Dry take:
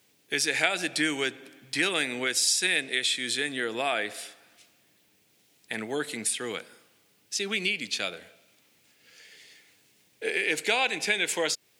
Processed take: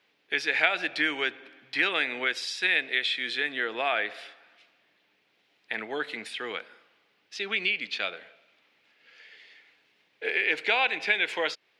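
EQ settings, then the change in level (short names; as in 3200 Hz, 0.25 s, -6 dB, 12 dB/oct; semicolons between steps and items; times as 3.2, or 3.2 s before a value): HPF 1100 Hz 6 dB/oct; air absorption 340 m; +7.0 dB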